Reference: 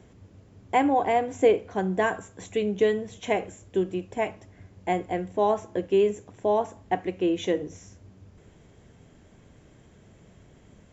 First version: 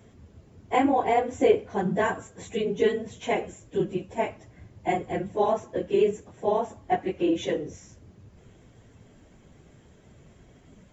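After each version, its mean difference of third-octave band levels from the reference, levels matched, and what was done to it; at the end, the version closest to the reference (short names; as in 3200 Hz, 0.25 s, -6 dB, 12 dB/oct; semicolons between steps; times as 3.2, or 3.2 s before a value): 1.5 dB: phase scrambler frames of 50 ms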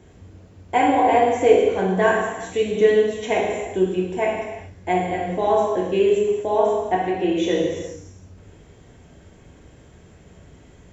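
4.5 dB: non-linear reverb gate 0.44 s falling, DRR -4 dB; gain +1 dB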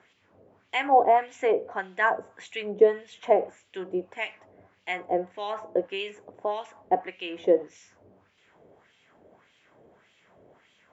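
6.5 dB: wah 1.7 Hz 510–3100 Hz, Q 2; gain +7.5 dB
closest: first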